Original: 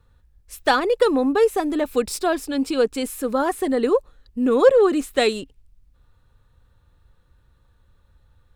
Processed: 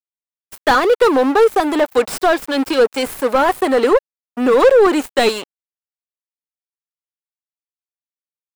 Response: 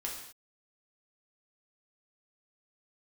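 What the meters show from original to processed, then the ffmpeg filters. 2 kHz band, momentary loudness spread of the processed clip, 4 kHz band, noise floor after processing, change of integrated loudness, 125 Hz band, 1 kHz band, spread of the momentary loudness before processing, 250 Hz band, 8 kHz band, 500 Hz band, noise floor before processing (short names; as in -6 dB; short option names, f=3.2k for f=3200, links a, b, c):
+7.5 dB, 7 LU, +6.0 dB, under -85 dBFS, +5.5 dB, n/a, +8.0 dB, 9 LU, +3.0 dB, +2.5 dB, +5.5 dB, -59 dBFS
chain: -filter_complex "[0:a]aeval=exprs='sgn(val(0))*max(abs(val(0))-0.0178,0)':c=same,aemphasis=mode=production:type=bsi,asplit=2[a][b];[b]highpass=f=720:p=1,volume=23dB,asoftclip=type=tanh:threshold=-3dB[c];[a][c]amix=inputs=2:normalize=0,lowpass=f=1.2k:p=1,volume=-6dB,volume=1.5dB"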